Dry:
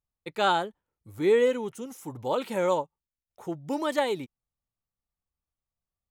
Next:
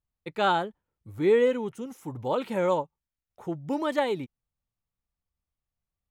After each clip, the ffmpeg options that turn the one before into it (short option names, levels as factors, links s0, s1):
-af "bass=f=250:g=4,treble=f=4000:g=-7"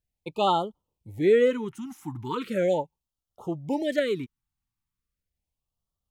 -af "afftfilt=real='re*(1-between(b*sr/1024,500*pow(2000/500,0.5+0.5*sin(2*PI*0.38*pts/sr))/1.41,500*pow(2000/500,0.5+0.5*sin(2*PI*0.38*pts/sr))*1.41))':imag='im*(1-between(b*sr/1024,500*pow(2000/500,0.5+0.5*sin(2*PI*0.38*pts/sr))/1.41,500*pow(2000/500,0.5+0.5*sin(2*PI*0.38*pts/sr))*1.41))':win_size=1024:overlap=0.75,volume=1.19"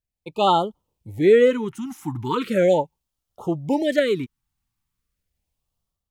-af "dynaudnorm=f=140:g=5:m=3.35,volume=0.668"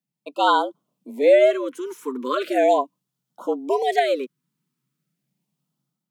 -af "afreqshift=130"